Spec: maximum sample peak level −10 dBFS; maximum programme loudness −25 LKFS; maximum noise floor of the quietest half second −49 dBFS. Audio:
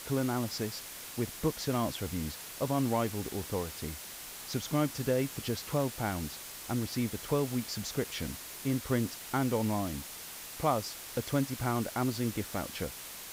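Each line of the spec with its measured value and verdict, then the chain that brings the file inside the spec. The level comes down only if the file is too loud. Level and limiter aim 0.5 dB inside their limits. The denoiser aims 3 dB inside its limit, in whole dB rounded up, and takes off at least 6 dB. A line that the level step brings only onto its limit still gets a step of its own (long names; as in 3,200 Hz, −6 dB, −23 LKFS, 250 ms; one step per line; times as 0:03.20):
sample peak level −15.5 dBFS: in spec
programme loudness −34.0 LKFS: in spec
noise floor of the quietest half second −45 dBFS: out of spec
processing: broadband denoise 7 dB, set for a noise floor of −45 dBFS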